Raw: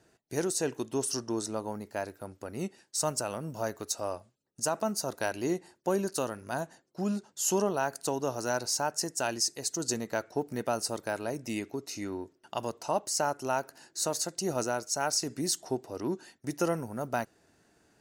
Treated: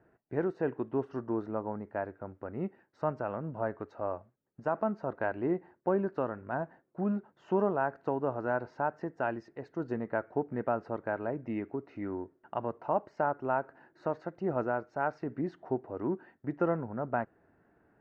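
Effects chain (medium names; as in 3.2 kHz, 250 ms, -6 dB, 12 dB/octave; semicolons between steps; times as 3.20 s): low-pass 1.8 kHz 24 dB/octave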